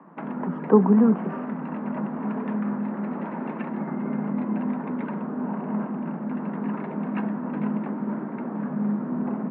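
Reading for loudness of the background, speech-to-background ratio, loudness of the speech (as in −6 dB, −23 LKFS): −29.5 LKFS, 10.0 dB, −19.5 LKFS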